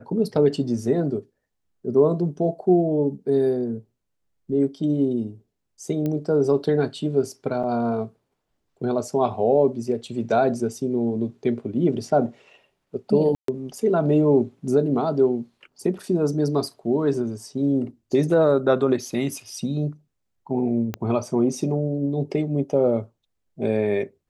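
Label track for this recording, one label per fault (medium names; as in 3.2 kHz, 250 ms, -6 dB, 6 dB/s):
6.060000	6.060000	pop -16 dBFS
7.630000	7.640000	dropout 6 ms
13.350000	13.480000	dropout 133 ms
20.940000	20.940000	pop -14 dBFS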